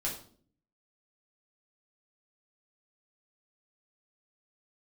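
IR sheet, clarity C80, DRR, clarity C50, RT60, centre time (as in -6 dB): 11.5 dB, -4.5 dB, 7.0 dB, 0.50 s, 26 ms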